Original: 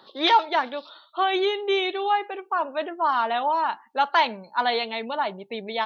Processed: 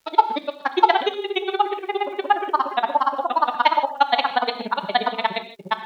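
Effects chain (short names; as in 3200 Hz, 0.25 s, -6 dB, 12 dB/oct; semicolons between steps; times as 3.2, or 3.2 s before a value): grains 39 ms, grains 17/s, spray 0.604 s, pitch spread up and down by 0 st; crackle 420/s -57 dBFS; non-linear reverb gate 0.18 s flat, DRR 8.5 dB; gain +8 dB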